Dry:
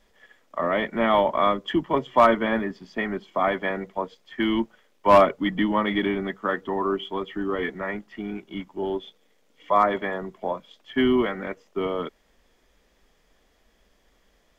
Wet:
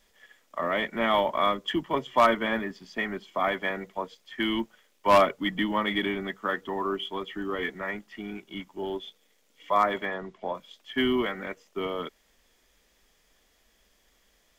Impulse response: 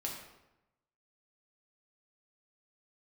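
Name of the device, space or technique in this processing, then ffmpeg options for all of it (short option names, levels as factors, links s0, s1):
exciter from parts: -filter_complex "[0:a]asplit=3[s0][s1][s2];[s0]afade=t=out:st=10.05:d=0.02[s3];[s1]lowpass=5000,afade=t=in:st=10.05:d=0.02,afade=t=out:st=10.53:d=0.02[s4];[s2]afade=t=in:st=10.53:d=0.02[s5];[s3][s4][s5]amix=inputs=3:normalize=0,asplit=2[s6][s7];[s7]highpass=3300,asoftclip=type=tanh:threshold=0.0106,highpass=4200,volume=0.2[s8];[s6][s8]amix=inputs=2:normalize=0,highshelf=f=2100:g=10.5,volume=0.531"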